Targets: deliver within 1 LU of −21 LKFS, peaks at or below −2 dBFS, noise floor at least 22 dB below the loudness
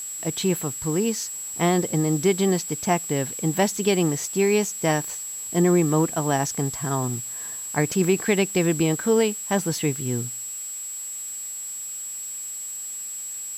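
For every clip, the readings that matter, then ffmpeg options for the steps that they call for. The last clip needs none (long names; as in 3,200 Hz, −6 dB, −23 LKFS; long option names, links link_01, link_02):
interfering tone 7,700 Hz; level of the tone −31 dBFS; background noise floor −34 dBFS; target noise floor −46 dBFS; integrated loudness −24.0 LKFS; sample peak −8.0 dBFS; target loudness −21.0 LKFS
→ -af "bandreject=frequency=7700:width=30"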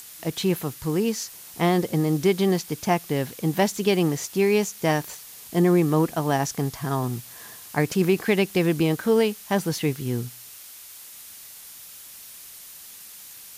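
interfering tone none found; background noise floor −44 dBFS; target noise floor −46 dBFS
→ -af "afftdn=noise_reduction=6:noise_floor=-44"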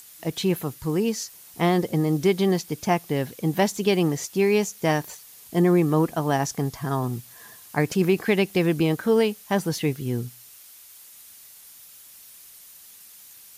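background noise floor −48 dBFS; integrated loudness −24.0 LKFS; sample peak −8.0 dBFS; target loudness −21.0 LKFS
→ -af "volume=3dB"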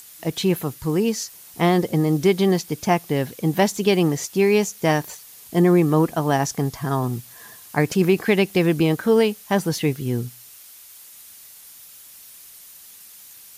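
integrated loudness −21.0 LKFS; sample peak −5.0 dBFS; background noise floor −45 dBFS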